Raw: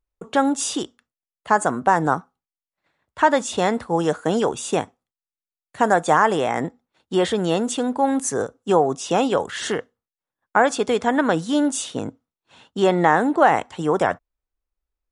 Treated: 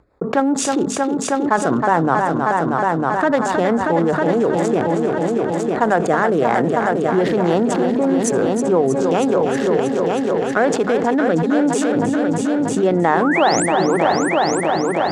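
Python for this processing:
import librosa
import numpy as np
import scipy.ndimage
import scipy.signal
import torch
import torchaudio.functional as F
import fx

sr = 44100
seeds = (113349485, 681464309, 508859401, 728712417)

p1 = fx.wiener(x, sr, points=15)
p2 = scipy.signal.sosfilt(scipy.signal.butter(2, 100.0, 'highpass', fs=sr, output='sos'), p1)
p3 = fx.high_shelf(p2, sr, hz=5000.0, db=-10.5)
p4 = fx.hum_notches(p3, sr, base_hz=50, count=5)
p5 = fx.level_steps(p4, sr, step_db=16)
p6 = p4 + (p5 * 10.0 ** (-0.5 / 20.0))
p7 = fx.spec_paint(p6, sr, seeds[0], shape='rise', start_s=13.21, length_s=0.45, low_hz=980.0, high_hz=10000.0, level_db=-25.0)
p8 = fx.rotary_switch(p7, sr, hz=5.0, then_hz=1.2, switch_at_s=4.17)
p9 = p8 + fx.echo_heads(p8, sr, ms=317, heads='all three', feedback_pct=44, wet_db=-11, dry=0)
p10 = fx.env_flatten(p9, sr, amount_pct=70)
y = p10 * 10.0 ** (-4.5 / 20.0)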